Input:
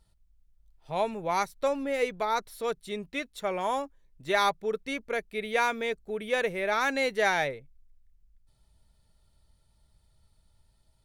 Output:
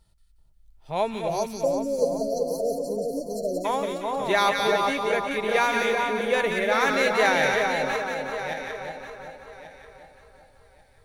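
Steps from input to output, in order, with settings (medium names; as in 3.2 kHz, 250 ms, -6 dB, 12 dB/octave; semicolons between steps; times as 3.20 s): backward echo that repeats 569 ms, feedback 43%, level -6.5 dB; spectral selection erased 1.28–3.65 s, 720–4100 Hz; two-band feedback delay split 1.3 kHz, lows 385 ms, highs 180 ms, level -3 dB; trim +3 dB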